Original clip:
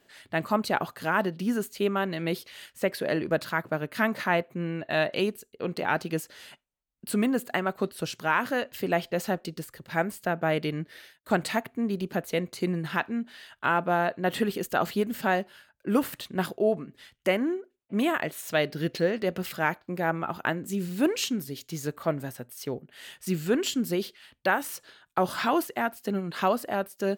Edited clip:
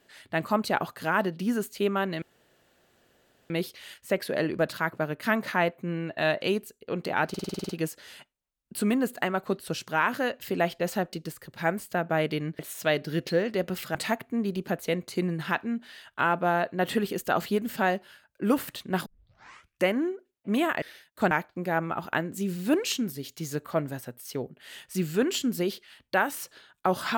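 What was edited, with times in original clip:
2.22 insert room tone 1.28 s
6.01 stutter 0.05 s, 9 plays
10.91–11.4 swap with 18.27–19.63
16.51 tape start 0.80 s

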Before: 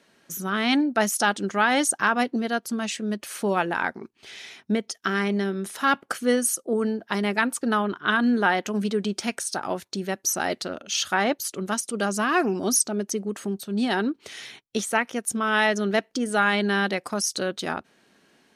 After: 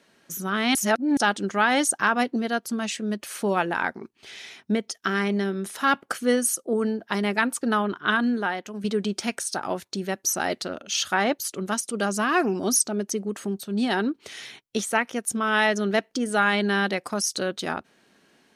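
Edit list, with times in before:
0.75–1.17 reverse
8.13–8.84 fade out quadratic, to -9 dB

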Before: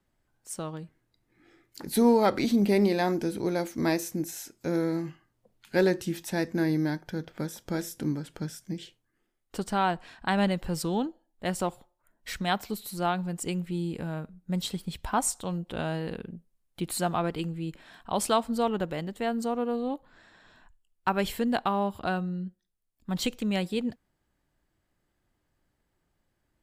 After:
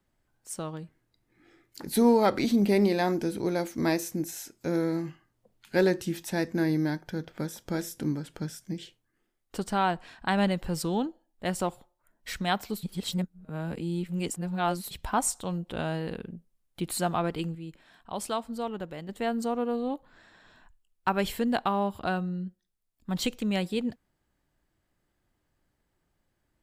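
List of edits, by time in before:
12.83–14.91 reverse
17.55–19.09 gain -6.5 dB

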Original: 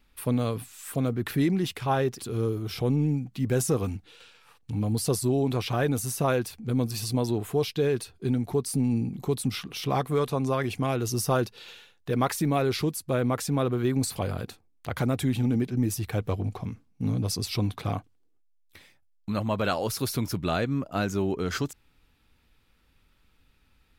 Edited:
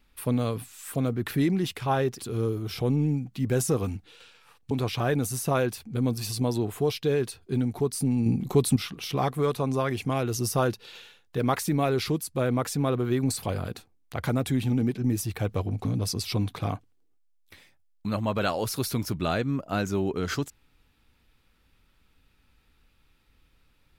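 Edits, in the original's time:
4.71–5.44 cut
8.99–9.49 gain +5.5 dB
16.58–17.08 cut

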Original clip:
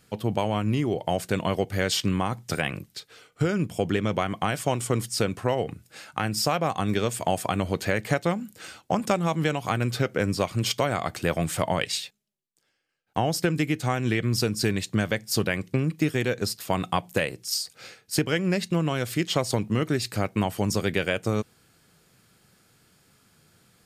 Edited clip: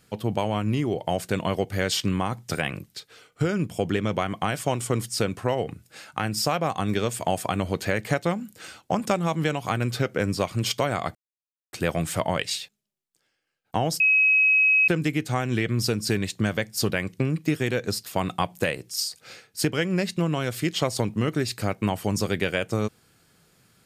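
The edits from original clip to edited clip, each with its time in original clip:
11.15 insert silence 0.58 s
13.42 add tone 2550 Hz -15.5 dBFS 0.88 s

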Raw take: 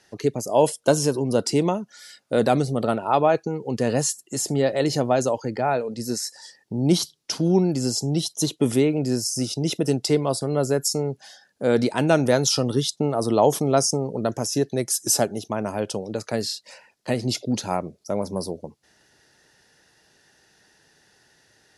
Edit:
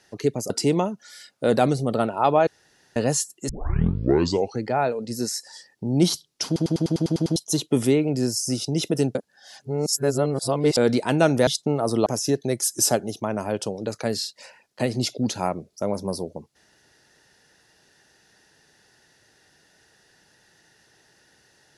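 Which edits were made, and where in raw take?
0.5–1.39 cut
3.36–3.85 room tone
4.38 tape start 1.14 s
7.35 stutter in place 0.10 s, 9 plays
10.04–11.66 reverse
12.36–12.81 cut
13.4–14.34 cut

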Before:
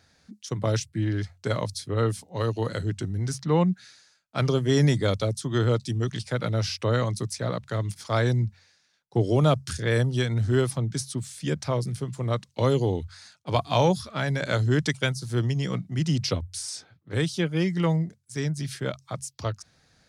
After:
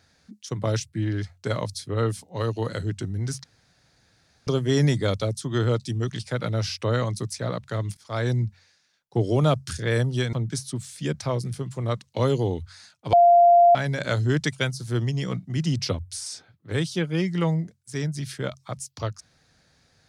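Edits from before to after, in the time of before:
3.44–4.47 room tone
7.97–8.33 fade in, from -17 dB
10.33–10.75 cut
13.55–14.17 bleep 694 Hz -11 dBFS

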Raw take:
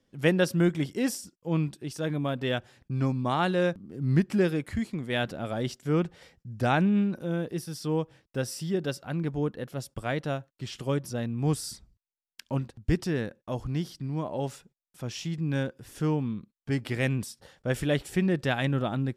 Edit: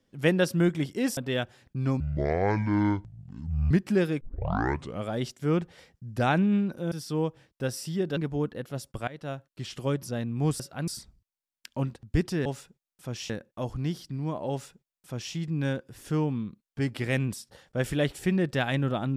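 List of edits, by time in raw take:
1.17–2.32 cut
3.15–4.14 speed 58%
4.64 tape start 0.87 s
7.35–7.66 cut
8.91–9.19 move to 11.62
10.1–10.49 fade in, from -20 dB
14.41–15.25 copy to 13.2

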